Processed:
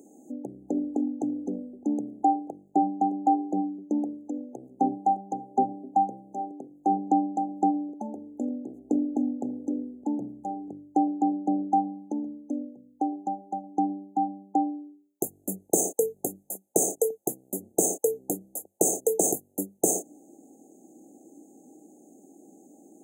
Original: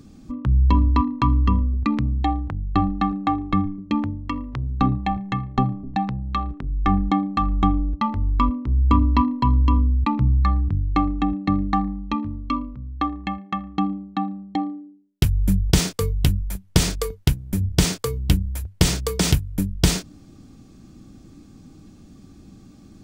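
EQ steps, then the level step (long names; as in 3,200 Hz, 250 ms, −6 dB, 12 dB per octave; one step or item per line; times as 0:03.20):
high-pass filter 330 Hz 24 dB per octave
linear-phase brick-wall band-stop 850–6,200 Hz
+3.5 dB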